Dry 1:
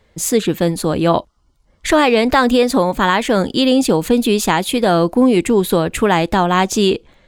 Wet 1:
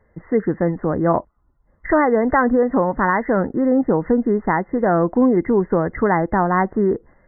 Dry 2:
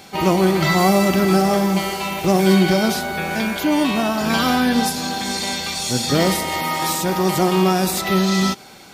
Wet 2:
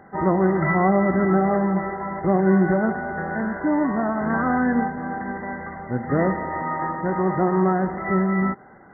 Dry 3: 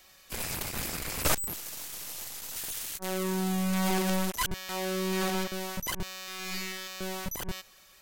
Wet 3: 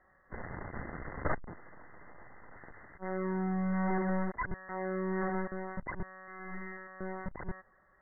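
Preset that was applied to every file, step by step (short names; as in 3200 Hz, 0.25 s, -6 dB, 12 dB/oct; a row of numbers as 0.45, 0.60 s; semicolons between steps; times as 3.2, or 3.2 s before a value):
brick-wall FIR low-pass 2100 Hz; gain -3 dB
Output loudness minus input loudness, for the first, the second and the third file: -3.5, -4.0, -5.0 LU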